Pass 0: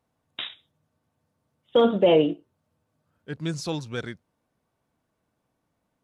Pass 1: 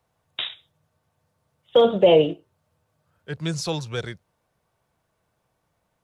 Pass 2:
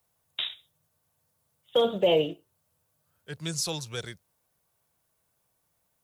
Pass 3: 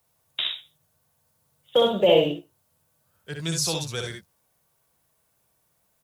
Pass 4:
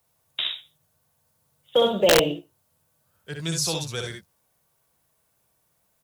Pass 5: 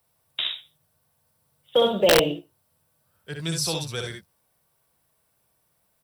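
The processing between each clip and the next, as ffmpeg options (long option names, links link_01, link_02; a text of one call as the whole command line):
ffmpeg -i in.wav -filter_complex "[0:a]equalizer=frequency=260:width_type=o:width=0.7:gain=-11.5,acrossover=split=310|920|2300[link_01][link_02][link_03][link_04];[link_03]acompressor=threshold=-45dB:ratio=6[link_05];[link_01][link_02][link_05][link_04]amix=inputs=4:normalize=0,volume=5.5dB" out.wav
ffmpeg -i in.wav -af "aemphasis=mode=production:type=75fm,volume=-7dB" out.wav
ffmpeg -i in.wav -af "aecho=1:1:61|75:0.562|0.335,volume=3.5dB" out.wav
ffmpeg -i in.wav -af "aeval=exprs='(mod(2.66*val(0)+1,2)-1)/2.66':channel_layout=same" out.wav
ffmpeg -i in.wav -af "bandreject=frequency=6700:width=5.7" out.wav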